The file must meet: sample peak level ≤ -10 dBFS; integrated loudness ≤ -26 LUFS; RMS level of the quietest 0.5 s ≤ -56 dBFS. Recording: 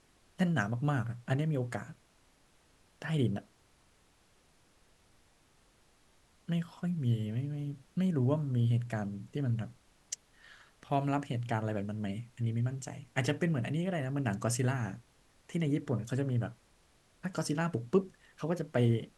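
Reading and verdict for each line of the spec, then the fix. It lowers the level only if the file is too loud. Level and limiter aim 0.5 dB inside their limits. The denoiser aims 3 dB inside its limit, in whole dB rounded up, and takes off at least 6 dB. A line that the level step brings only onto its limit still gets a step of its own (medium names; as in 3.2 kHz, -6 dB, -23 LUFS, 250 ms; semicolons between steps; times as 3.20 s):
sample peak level -14.0 dBFS: pass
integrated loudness -34.0 LUFS: pass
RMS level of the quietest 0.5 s -67 dBFS: pass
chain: none needed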